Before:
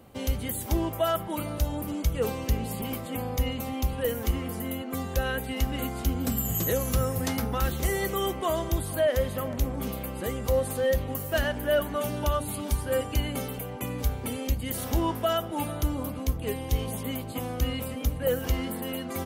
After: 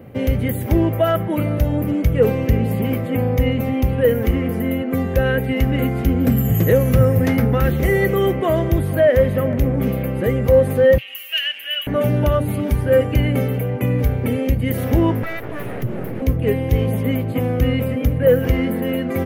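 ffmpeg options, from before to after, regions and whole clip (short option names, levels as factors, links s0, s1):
-filter_complex "[0:a]asettb=1/sr,asplit=3[s0][s1][s2];[s0]atrim=end=10.984[s3];[s1]atrim=start=10.98:end=11.87,asetpts=PTS-STARTPTS,afade=t=in:d=0.004:c=qsin,afade=t=out:st=0.886:d=0.004:c=qsin,acompressor=threshold=0.0355:ratio=1.5:attack=3.2:release=140:knee=1:detection=peak,highpass=f=2800:t=q:w=9.3[s4];[s2]atrim=start=11.866[s5];[s3][s4]acrossfade=d=0.004:c1=hsin:c2=qsin[s6];[s6][s5]acrossfade=d=0.004:c1=qsin:c2=hsin,asettb=1/sr,asplit=3[s7][s8][s9];[s7]atrim=end=15.234[s10];[s8]atrim=start=15.23:end=16.22,asetpts=PTS-STARTPTS,afade=t=in:d=0.004:c=qsin,afade=t=out:st=0.986:d=0.004:c=qsin,asubboost=boost=2.5:cutoff=210,acompressor=threshold=0.0282:ratio=3:attack=3.2:release=140:knee=1:detection=peak,aeval=exprs='abs(val(0))':c=same[s11];[s9]atrim=start=16.216[s12];[s10][s11]acrossfade=d=0.004:c1=hsin:c2=qsin[s13];[s13][s12]acrossfade=d=0.004:c1=qsin:c2=hsin,equalizer=f=125:t=o:w=1:g=12,equalizer=f=250:t=o:w=1:g=4,equalizer=f=500:t=o:w=1:g=8,equalizer=f=1000:t=o:w=1:g=-5,equalizer=f=2000:t=o:w=1:g=9,equalizer=f=4000:t=o:w=1:g=-7,equalizer=f=8000:t=o:w=1:g=-12,acontrast=30"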